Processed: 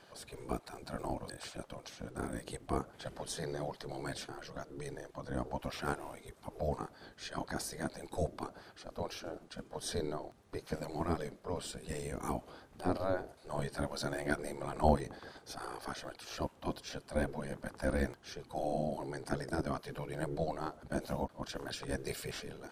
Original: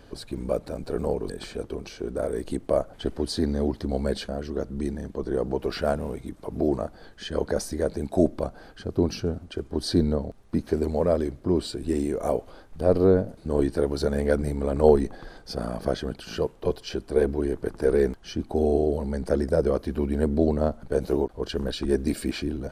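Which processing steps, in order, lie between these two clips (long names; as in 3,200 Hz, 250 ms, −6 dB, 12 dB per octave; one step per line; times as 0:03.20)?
gate on every frequency bin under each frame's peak −10 dB weak
level −3 dB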